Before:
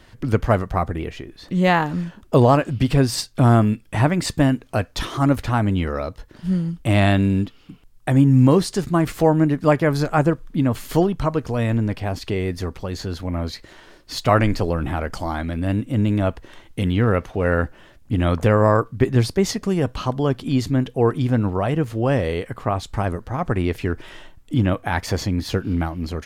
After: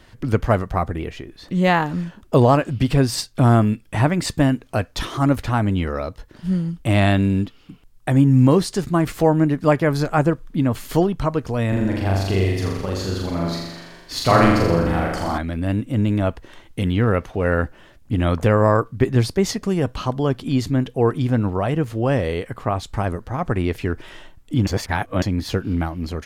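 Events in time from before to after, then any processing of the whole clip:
11.68–15.38 s: flutter echo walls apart 7.1 m, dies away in 1.1 s
24.67–25.22 s: reverse

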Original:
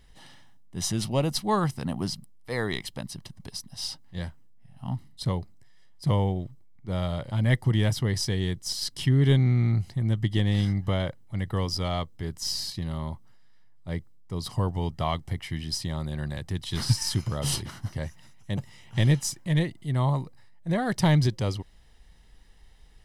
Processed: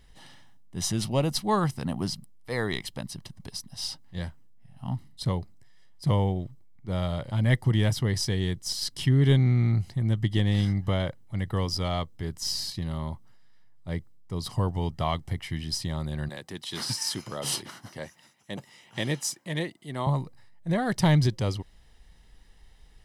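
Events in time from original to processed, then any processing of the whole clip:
16.29–20.07 s: high-pass 260 Hz

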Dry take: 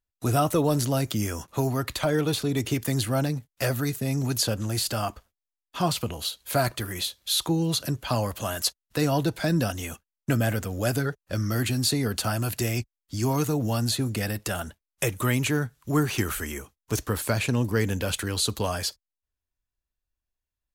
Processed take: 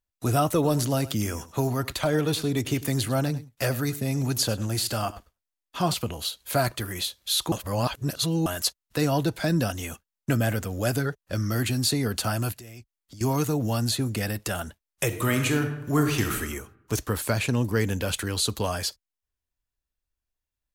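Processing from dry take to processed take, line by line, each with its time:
0.53–5.94 s: delay 100 ms -16.5 dB
7.52–8.46 s: reverse
12.52–13.21 s: compression, threshold -42 dBFS
15.06–16.36 s: reverb throw, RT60 0.91 s, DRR 4 dB

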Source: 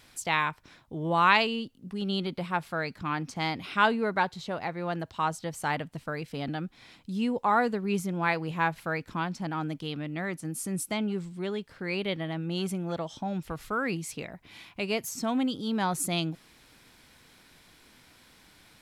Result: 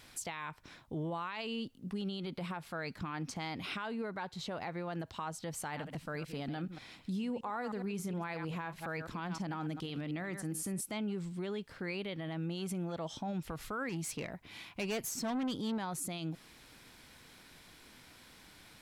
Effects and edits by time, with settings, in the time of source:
5.64–10.84 s: chunks repeated in reverse 104 ms, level -13 dB
13.89–15.78 s: valve stage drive 31 dB, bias 0.25
whole clip: compression 6:1, threshold -31 dBFS; peak limiter -30 dBFS

